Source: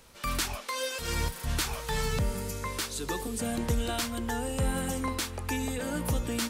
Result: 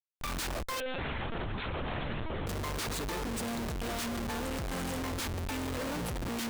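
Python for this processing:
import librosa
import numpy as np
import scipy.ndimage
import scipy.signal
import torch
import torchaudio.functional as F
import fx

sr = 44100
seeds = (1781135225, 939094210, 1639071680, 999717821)

y = fx.schmitt(x, sr, flips_db=-37.5)
y = fx.lpc_vocoder(y, sr, seeds[0], excitation='pitch_kept', order=10, at=(0.8, 2.47))
y = y * 10.0 ** (-3.5 / 20.0)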